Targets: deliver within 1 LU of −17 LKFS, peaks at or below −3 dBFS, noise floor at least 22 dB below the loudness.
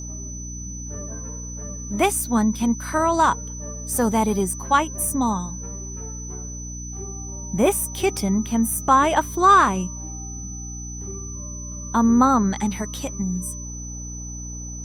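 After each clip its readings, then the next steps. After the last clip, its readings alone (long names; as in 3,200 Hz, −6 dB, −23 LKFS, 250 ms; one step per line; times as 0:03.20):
mains hum 60 Hz; hum harmonics up to 300 Hz; level of the hum −32 dBFS; interfering tone 6,000 Hz; level of the tone −35 dBFS; integrated loudness −23.0 LKFS; sample peak −4.5 dBFS; target loudness −17.0 LKFS
→ mains-hum notches 60/120/180/240/300 Hz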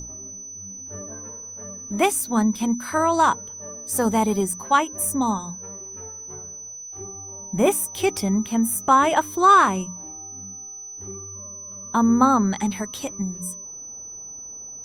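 mains hum none found; interfering tone 6,000 Hz; level of the tone −35 dBFS
→ notch filter 6,000 Hz, Q 30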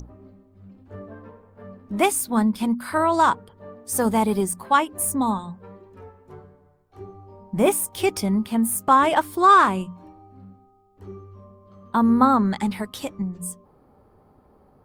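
interfering tone none found; integrated loudness −21.0 LKFS; sample peak −5.0 dBFS; target loudness −17.0 LKFS
→ level +4 dB
brickwall limiter −3 dBFS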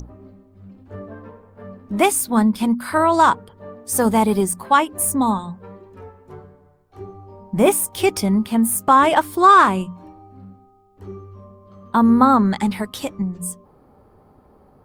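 integrated loudness −17.5 LKFS; sample peak −3.0 dBFS; background noise floor −53 dBFS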